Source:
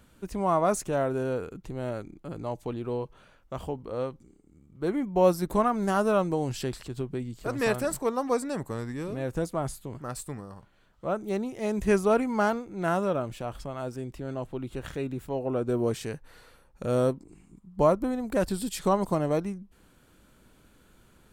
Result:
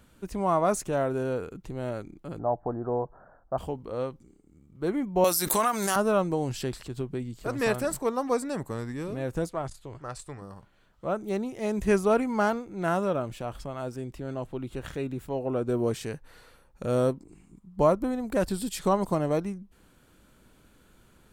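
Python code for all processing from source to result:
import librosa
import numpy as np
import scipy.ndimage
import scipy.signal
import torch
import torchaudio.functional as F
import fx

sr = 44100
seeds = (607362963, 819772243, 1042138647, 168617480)

y = fx.chain(x, sr, fx.steep_lowpass(hz=1700.0, slope=72),
    fx.peak_eq(hz=710.0, db=13.0, octaves=0.54), at=(2.39, 3.58))
y = fx.chain(y, sr, fx.tilt_eq(slope=4.5),
    fx.pre_swell(db_per_s=32.0), at=(5.24, 5.96))
y = fx.chain(y, sr, fx.lowpass(hz=7100.0, slope=12),
    fx.peak_eq(hz=210.0, db=-11.0, octaves=0.83),
    fx.transformer_sat(knee_hz=280.0), at=(9.49, 10.42))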